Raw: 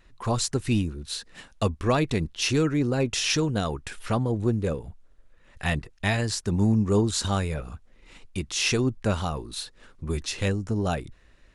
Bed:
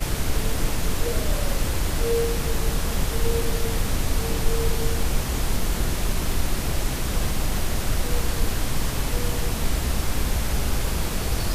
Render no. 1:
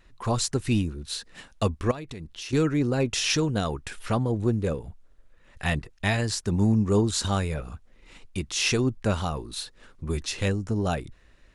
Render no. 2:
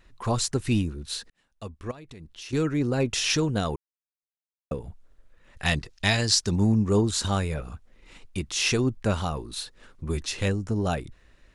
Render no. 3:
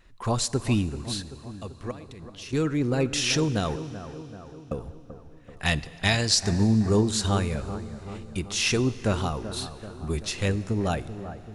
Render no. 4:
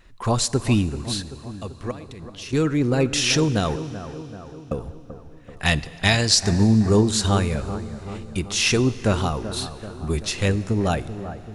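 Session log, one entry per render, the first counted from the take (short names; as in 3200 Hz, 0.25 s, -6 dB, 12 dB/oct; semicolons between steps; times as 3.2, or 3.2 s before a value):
1.91–2.53 compressor, threshold -35 dBFS
1.3–3.01 fade in; 3.76–4.71 mute; 5.65–6.56 bell 5000 Hz +11 dB 1.4 oct
analogue delay 0.385 s, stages 4096, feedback 58%, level -12 dB; Schroeder reverb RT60 3.4 s, combs from 32 ms, DRR 17 dB
gain +4.5 dB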